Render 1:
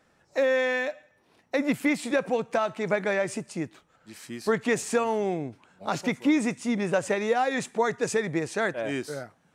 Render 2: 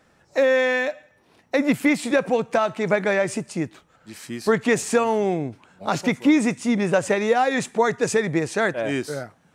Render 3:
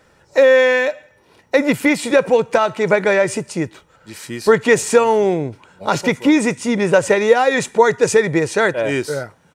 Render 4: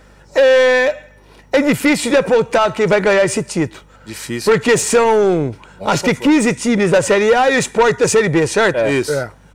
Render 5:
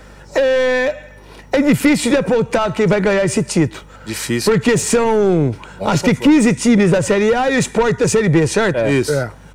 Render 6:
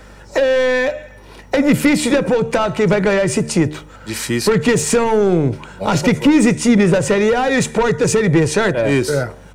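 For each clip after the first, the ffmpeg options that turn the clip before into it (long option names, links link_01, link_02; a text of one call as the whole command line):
ffmpeg -i in.wav -af "equalizer=frequency=70:width_type=o:width=2.7:gain=2.5,volume=5dB" out.wav
ffmpeg -i in.wav -af "aecho=1:1:2.1:0.36,volume=5.5dB" out.wav
ffmpeg -i in.wav -af "acontrast=78,asoftclip=type=tanh:threshold=-3.5dB,aeval=exprs='val(0)+0.00562*(sin(2*PI*50*n/s)+sin(2*PI*2*50*n/s)/2+sin(2*PI*3*50*n/s)/3+sin(2*PI*4*50*n/s)/4+sin(2*PI*5*50*n/s)/5)':channel_layout=same,volume=-1.5dB" out.wav
ffmpeg -i in.wav -filter_complex "[0:a]acrossover=split=260[link_01][link_02];[link_02]acompressor=threshold=-24dB:ratio=2.5[link_03];[link_01][link_03]amix=inputs=2:normalize=0,volume=5.5dB" out.wav
ffmpeg -i in.wav -af "bandreject=frequency=75.7:width_type=h:width=4,bandreject=frequency=151.4:width_type=h:width=4,bandreject=frequency=227.1:width_type=h:width=4,bandreject=frequency=302.8:width_type=h:width=4,bandreject=frequency=378.5:width_type=h:width=4,bandreject=frequency=454.2:width_type=h:width=4,bandreject=frequency=529.9:width_type=h:width=4,bandreject=frequency=605.6:width_type=h:width=4,bandreject=frequency=681.3:width_type=h:width=4,bandreject=frequency=757:width_type=h:width=4" out.wav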